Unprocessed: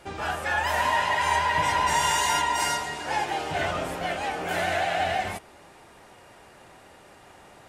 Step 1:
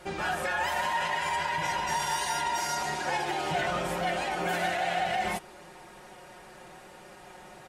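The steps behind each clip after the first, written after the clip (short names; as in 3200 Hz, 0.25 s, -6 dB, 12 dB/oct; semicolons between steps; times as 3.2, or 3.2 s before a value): limiter -22.5 dBFS, peak gain reduction 9.5 dB; comb 5.5 ms, depth 71%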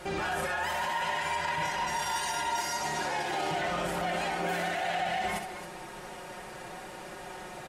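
limiter -29.5 dBFS, peak gain reduction 11 dB; loudspeakers at several distances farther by 22 m -7 dB, 93 m -11 dB; gain +5 dB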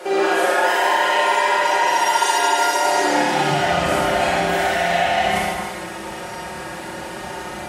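Schroeder reverb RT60 1.4 s, combs from 27 ms, DRR -5 dB; high-pass sweep 420 Hz -> 65 Hz, 2.98–3.85; gain +6 dB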